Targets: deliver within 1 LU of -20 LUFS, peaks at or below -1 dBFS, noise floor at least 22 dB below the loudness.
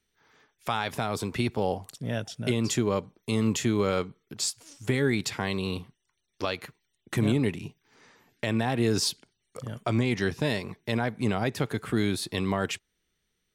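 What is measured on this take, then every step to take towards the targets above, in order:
loudness -29.0 LUFS; peak -14.5 dBFS; loudness target -20.0 LUFS
-> gain +9 dB

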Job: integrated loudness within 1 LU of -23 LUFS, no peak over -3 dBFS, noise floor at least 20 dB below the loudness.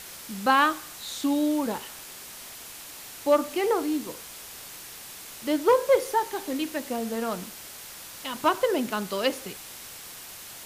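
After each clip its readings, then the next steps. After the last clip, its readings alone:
noise floor -43 dBFS; noise floor target -47 dBFS; loudness -26.5 LUFS; peak -9.5 dBFS; loudness target -23.0 LUFS
-> denoiser 6 dB, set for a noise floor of -43 dBFS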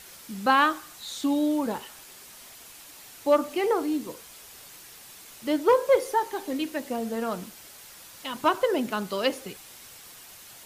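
noise floor -48 dBFS; loudness -26.5 LUFS; peak -9.5 dBFS; loudness target -23.0 LUFS
-> gain +3.5 dB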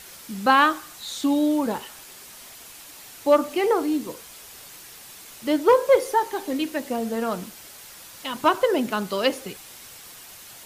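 loudness -23.0 LUFS; peak -6.0 dBFS; noise floor -44 dBFS

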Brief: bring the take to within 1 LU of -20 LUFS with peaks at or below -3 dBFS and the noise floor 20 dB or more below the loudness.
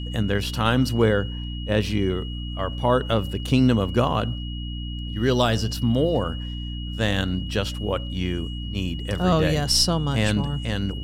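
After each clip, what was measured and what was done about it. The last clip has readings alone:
hum 60 Hz; harmonics up to 300 Hz; hum level -28 dBFS; steady tone 2900 Hz; tone level -38 dBFS; loudness -23.5 LUFS; peak -6.5 dBFS; loudness target -20.0 LUFS
-> notches 60/120/180/240/300 Hz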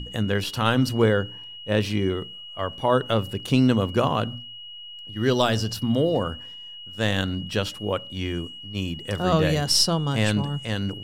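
hum none; steady tone 2900 Hz; tone level -38 dBFS
-> notch 2900 Hz, Q 30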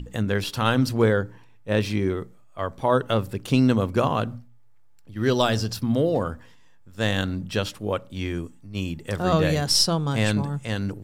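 steady tone none; loudness -24.0 LUFS; peak -6.0 dBFS; loudness target -20.0 LUFS
-> gain +4 dB; limiter -3 dBFS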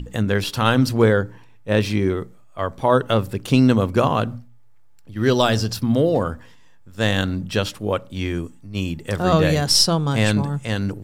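loudness -20.0 LUFS; peak -3.0 dBFS; noise floor -45 dBFS

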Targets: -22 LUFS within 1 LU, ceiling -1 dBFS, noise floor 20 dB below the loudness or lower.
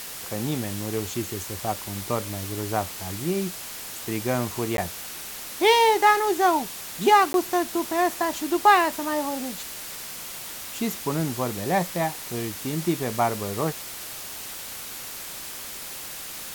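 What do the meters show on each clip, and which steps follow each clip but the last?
dropouts 2; longest dropout 12 ms; noise floor -37 dBFS; noise floor target -46 dBFS; loudness -25.5 LUFS; peak -7.0 dBFS; loudness target -22.0 LUFS
-> interpolate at 4.77/7.33, 12 ms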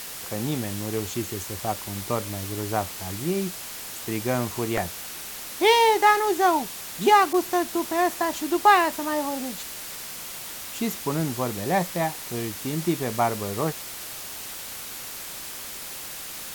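dropouts 0; noise floor -37 dBFS; noise floor target -46 dBFS
-> denoiser 9 dB, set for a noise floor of -37 dBFS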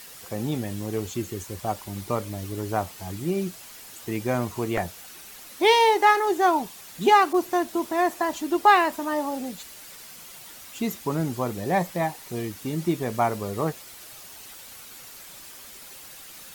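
noise floor -44 dBFS; noise floor target -45 dBFS
-> denoiser 6 dB, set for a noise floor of -44 dBFS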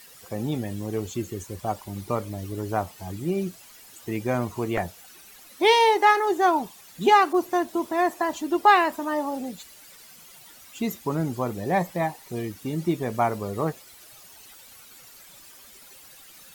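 noise floor -49 dBFS; loudness -25.0 LUFS; peak -7.0 dBFS; loudness target -22.0 LUFS
-> gain +3 dB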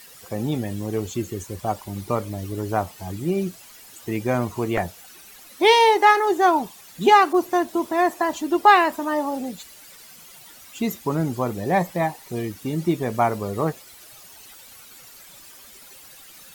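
loudness -22.0 LUFS; peak -4.0 dBFS; noise floor -46 dBFS

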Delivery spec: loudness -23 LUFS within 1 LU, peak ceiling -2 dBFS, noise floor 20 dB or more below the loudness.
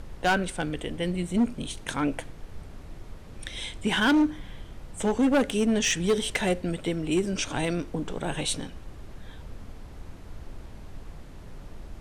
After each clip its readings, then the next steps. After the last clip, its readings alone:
clipped 1.1%; flat tops at -17.5 dBFS; noise floor -44 dBFS; noise floor target -47 dBFS; loudness -27.0 LUFS; peak -17.5 dBFS; loudness target -23.0 LUFS
-> clip repair -17.5 dBFS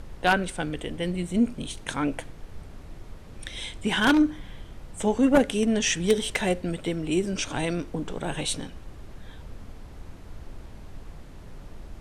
clipped 0.0%; noise floor -44 dBFS; noise floor target -46 dBFS
-> noise print and reduce 6 dB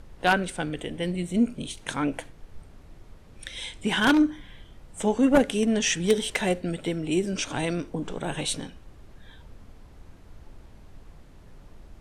noise floor -50 dBFS; loudness -26.0 LUFS; peak -8.5 dBFS; loudness target -23.0 LUFS
-> gain +3 dB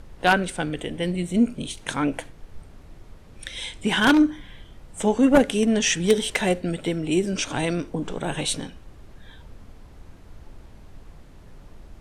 loudness -23.0 LUFS; peak -5.5 dBFS; noise floor -47 dBFS

